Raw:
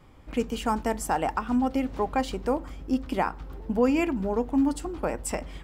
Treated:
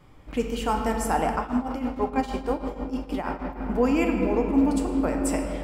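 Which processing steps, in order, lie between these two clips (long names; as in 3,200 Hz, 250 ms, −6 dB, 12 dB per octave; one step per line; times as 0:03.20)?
rectangular room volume 170 cubic metres, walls hard, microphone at 0.38 metres
0:01.36–0:03.61: shaped tremolo triangle 6.3 Hz, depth 80%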